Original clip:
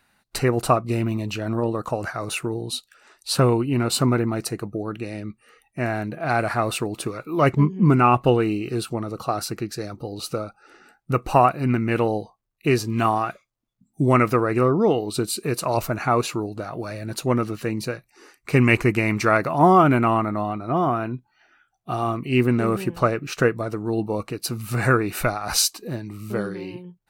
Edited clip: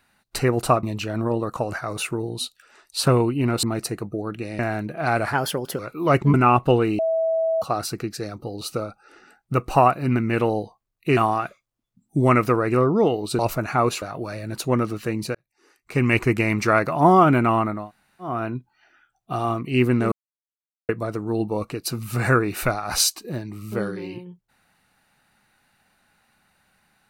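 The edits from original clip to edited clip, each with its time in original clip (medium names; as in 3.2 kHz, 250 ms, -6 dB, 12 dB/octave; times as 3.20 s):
0.83–1.15 s: delete
3.95–4.24 s: delete
5.20–5.82 s: delete
6.56–7.11 s: speed 120%
7.66–7.92 s: delete
8.57–9.20 s: bleep 651 Hz -18.5 dBFS
12.75–13.01 s: delete
15.23–15.71 s: delete
16.34–16.60 s: delete
17.93–18.93 s: fade in
20.38–20.89 s: room tone, crossfade 0.24 s
22.70–23.47 s: mute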